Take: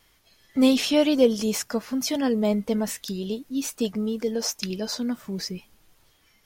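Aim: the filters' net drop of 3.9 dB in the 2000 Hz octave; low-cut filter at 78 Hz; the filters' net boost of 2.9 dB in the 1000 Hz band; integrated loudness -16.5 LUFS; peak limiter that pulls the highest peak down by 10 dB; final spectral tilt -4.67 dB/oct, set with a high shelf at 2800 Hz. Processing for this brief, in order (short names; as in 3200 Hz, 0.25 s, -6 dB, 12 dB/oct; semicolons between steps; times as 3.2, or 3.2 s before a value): HPF 78 Hz; bell 1000 Hz +5 dB; bell 2000 Hz -4.5 dB; high shelf 2800 Hz -4 dB; gain +11.5 dB; limiter -5.5 dBFS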